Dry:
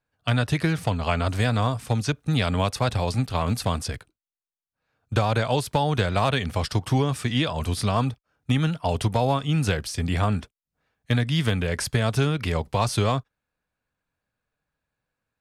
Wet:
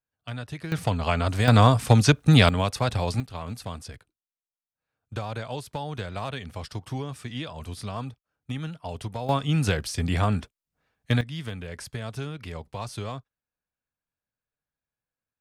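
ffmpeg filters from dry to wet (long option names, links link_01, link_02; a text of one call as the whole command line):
ffmpeg -i in.wav -af "asetnsamples=nb_out_samples=441:pad=0,asendcmd='0.72 volume volume -0.5dB;1.48 volume volume 7dB;2.49 volume volume -1.5dB;3.2 volume volume -10.5dB;9.29 volume volume -0.5dB;11.21 volume volume -11.5dB',volume=-12.5dB" out.wav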